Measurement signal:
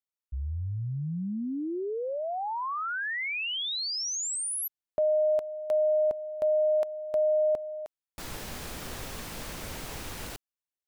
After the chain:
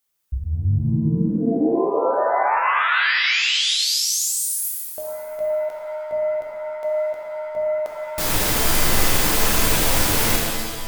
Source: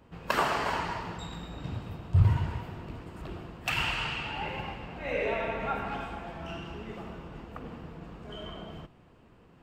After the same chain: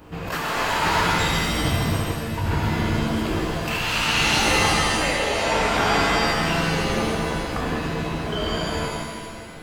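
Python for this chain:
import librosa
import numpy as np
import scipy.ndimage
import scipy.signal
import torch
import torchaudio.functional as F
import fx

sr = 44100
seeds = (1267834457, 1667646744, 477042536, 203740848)

y = fx.high_shelf(x, sr, hz=8400.0, db=8.0)
y = fx.hum_notches(y, sr, base_hz=60, count=4)
y = fx.over_compress(y, sr, threshold_db=-35.0, ratio=-1.0)
y = fx.rev_shimmer(y, sr, seeds[0], rt60_s=1.4, semitones=7, shimmer_db=-2, drr_db=-1.0)
y = y * 10.0 ** (8.5 / 20.0)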